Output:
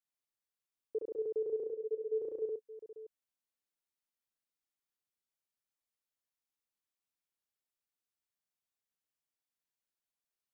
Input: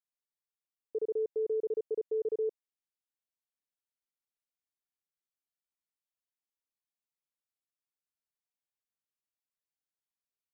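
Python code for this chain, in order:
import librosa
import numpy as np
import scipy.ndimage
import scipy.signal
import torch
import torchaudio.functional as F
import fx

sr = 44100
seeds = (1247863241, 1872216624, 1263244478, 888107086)

y = fx.double_bandpass(x, sr, hz=310.0, octaves=0.97, at=(1.66, 2.15), fade=0.02)
y = fx.echo_multitap(y, sr, ms=(65, 573), db=(-3.5, -15.5))
y = y * librosa.db_to_amplitude(-2.0)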